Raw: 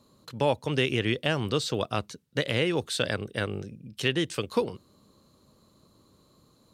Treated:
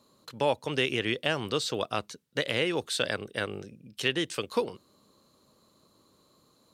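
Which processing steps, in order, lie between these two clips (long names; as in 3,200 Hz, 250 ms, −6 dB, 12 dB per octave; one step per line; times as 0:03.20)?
low-shelf EQ 190 Hz −11.5 dB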